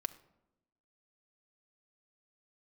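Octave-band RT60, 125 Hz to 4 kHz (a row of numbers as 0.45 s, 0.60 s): 1.1 s, 1.2 s, 1.0 s, 0.80 s, 0.60 s, 0.50 s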